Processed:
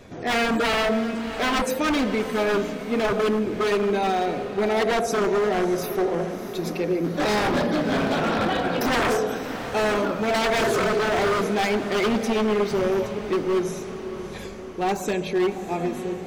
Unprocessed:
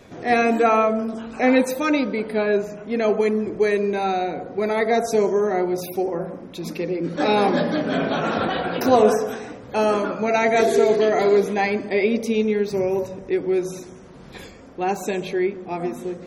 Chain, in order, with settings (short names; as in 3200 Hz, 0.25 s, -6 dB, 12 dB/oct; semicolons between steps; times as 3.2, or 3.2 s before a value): low shelf 90 Hz +6 dB; wavefolder -17 dBFS; diffused feedback echo 0.654 s, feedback 56%, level -11.5 dB